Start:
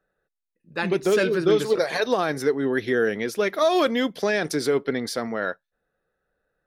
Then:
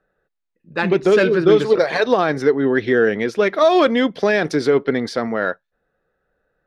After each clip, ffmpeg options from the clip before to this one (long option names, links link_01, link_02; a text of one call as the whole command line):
ffmpeg -i in.wav -af "adynamicsmooth=sensitivity=0.5:basefreq=4300,volume=6.5dB" out.wav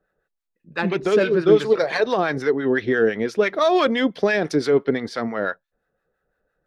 ffmpeg -i in.wav -filter_complex "[0:a]acrossover=split=820[link_01][link_02];[link_01]aeval=exprs='val(0)*(1-0.7/2+0.7/2*cos(2*PI*5.9*n/s))':channel_layout=same[link_03];[link_02]aeval=exprs='val(0)*(1-0.7/2-0.7/2*cos(2*PI*5.9*n/s))':channel_layout=same[link_04];[link_03][link_04]amix=inputs=2:normalize=0" out.wav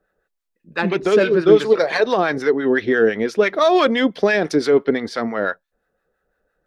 ffmpeg -i in.wav -af "equalizer=frequency=130:width_type=o:width=0.47:gain=-7.5,volume=3dB" out.wav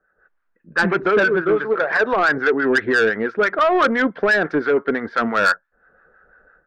ffmpeg -i in.wav -af "dynaudnorm=framelen=160:gausssize=3:maxgain=16.5dB,lowpass=frequency=1500:width_type=q:width=4.3,asoftclip=type=tanh:threshold=-4.5dB,volume=-5.5dB" out.wav